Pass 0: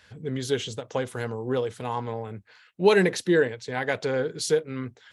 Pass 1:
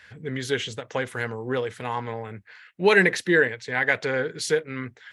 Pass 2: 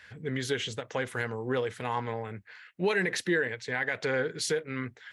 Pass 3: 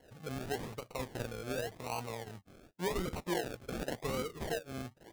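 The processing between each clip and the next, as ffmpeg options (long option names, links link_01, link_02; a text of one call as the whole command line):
ffmpeg -i in.wav -af "equalizer=frequency=1900:width=1.4:gain=11,volume=-1dB" out.wav
ffmpeg -i in.wav -af "alimiter=limit=-16dB:level=0:latency=1:release=119,volume=-2dB" out.wav
ffmpeg -i in.wav -af "acrusher=samples=36:mix=1:aa=0.000001:lfo=1:lforange=21.6:lforate=0.89,volume=-7.5dB" out.wav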